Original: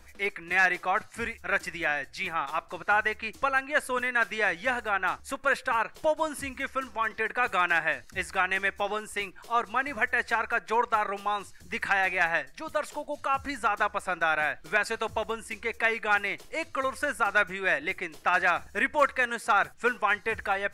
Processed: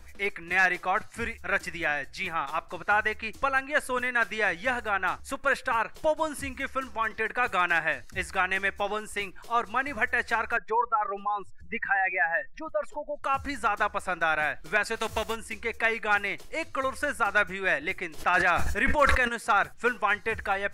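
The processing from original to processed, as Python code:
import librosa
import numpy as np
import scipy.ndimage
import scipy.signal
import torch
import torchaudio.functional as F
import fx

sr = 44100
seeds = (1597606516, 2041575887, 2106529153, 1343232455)

y = fx.spec_expand(x, sr, power=2.0, at=(10.57, 13.24))
y = fx.envelope_flatten(y, sr, power=0.6, at=(14.95, 15.35), fade=0.02)
y = fx.sustainer(y, sr, db_per_s=46.0, at=(18.17, 19.27), fade=0.02)
y = fx.low_shelf(y, sr, hz=100.0, db=7.5)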